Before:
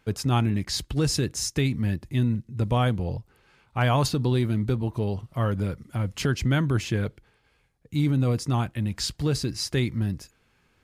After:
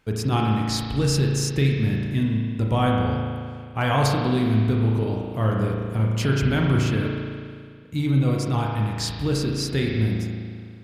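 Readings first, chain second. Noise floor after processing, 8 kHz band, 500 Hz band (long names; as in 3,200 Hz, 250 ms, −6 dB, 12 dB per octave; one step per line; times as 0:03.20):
−40 dBFS, 0.0 dB, +3.5 dB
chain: spring reverb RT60 2.1 s, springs 36 ms, chirp 30 ms, DRR −1 dB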